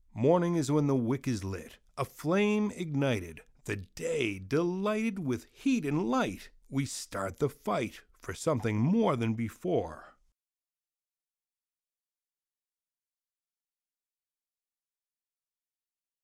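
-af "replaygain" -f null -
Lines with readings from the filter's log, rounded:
track_gain = +11.8 dB
track_peak = 0.160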